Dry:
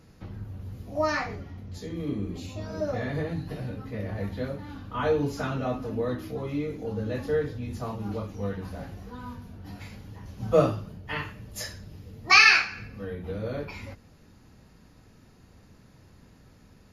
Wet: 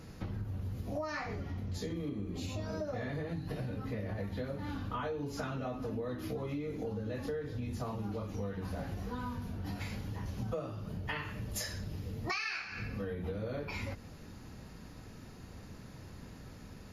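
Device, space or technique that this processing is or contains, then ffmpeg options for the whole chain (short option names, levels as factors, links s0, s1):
serial compression, leveller first: -af "acompressor=threshold=0.02:ratio=2,acompressor=threshold=0.01:ratio=6,volume=1.78"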